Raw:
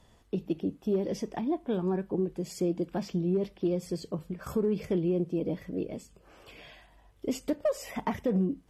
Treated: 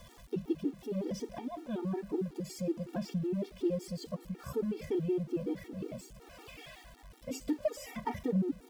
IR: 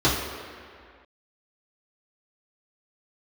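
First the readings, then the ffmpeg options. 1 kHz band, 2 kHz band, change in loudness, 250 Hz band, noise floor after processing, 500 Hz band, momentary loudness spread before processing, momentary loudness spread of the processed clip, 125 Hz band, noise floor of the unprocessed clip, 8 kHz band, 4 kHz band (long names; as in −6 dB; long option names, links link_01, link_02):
−4.5 dB, −4.0 dB, −5.0 dB, −4.5 dB, −57 dBFS, −5.5 dB, 8 LU, 16 LU, −4.5 dB, −61 dBFS, −3.0 dB, −3.0 dB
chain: -filter_complex "[0:a]aeval=exprs='val(0)+0.5*0.00562*sgn(val(0))':channel_layout=same,asplit=2[link_01][link_02];[1:a]atrim=start_sample=2205[link_03];[link_02][link_03]afir=irnorm=-1:irlink=0,volume=-37.5dB[link_04];[link_01][link_04]amix=inputs=2:normalize=0,afftfilt=real='re*gt(sin(2*PI*5.4*pts/sr)*(1-2*mod(floor(b*sr/1024/240),2)),0)':imag='im*gt(sin(2*PI*5.4*pts/sr)*(1-2*mod(floor(b*sr/1024/240),2)),0)':win_size=1024:overlap=0.75,volume=-2.5dB"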